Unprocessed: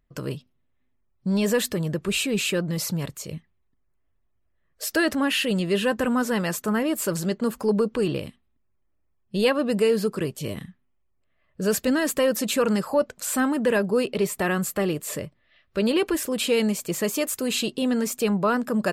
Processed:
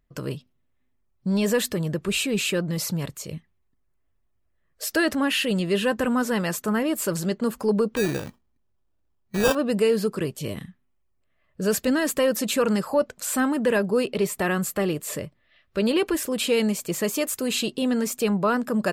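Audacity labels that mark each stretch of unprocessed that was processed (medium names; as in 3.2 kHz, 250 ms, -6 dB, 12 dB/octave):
7.960000	9.550000	sample-rate reducer 2.1 kHz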